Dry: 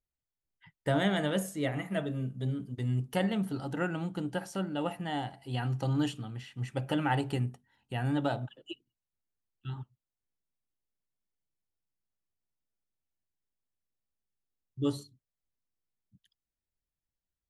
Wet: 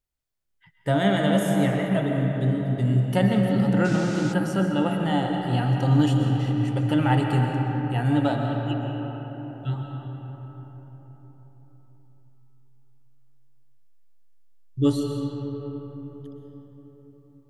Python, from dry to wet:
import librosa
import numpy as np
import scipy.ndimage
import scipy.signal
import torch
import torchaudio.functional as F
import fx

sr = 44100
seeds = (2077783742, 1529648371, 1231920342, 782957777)

p1 = fx.rider(x, sr, range_db=4, speed_s=2.0)
p2 = x + F.gain(torch.from_numpy(p1), 1.0).numpy()
p3 = fx.hpss(p2, sr, part='harmonic', gain_db=6)
p4 = fx.rev_freeverb(p3, sr, rt60_s=4.8, hf_ratio=0.4, predelay_ms=90, drr_db=1.5)
p5 = fx.dmg_noise_band(p4, sr, seeds[0], low_hz=780.0, high_hz=7200.0, level_db=-38.0, at=(3.84, 4.32), fade=0.02)
y = F.gain(torch.from_numpy(p5), -4.0).numpy()